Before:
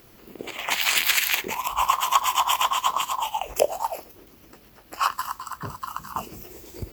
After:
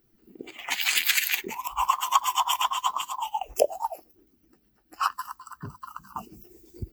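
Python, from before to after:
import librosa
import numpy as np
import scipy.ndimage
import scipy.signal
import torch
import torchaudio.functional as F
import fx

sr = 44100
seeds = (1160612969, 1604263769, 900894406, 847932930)

y = fx.bin_expand(x, sr, power=1.5)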